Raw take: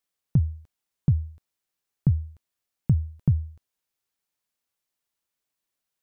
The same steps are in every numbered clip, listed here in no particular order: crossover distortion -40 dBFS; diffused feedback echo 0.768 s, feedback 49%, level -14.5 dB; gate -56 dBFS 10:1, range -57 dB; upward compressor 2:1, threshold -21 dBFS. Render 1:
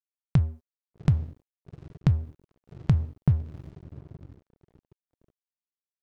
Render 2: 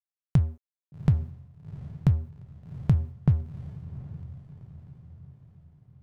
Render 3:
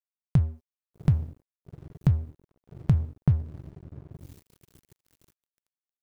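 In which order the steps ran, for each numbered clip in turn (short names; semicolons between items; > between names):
gate > upward compressor > diffused feedback echo > crossover distortion; crossover distortion > upward compressor > diffused feedback echo > gate; upward compressor > gate > diffused feedback echo > crossover distortion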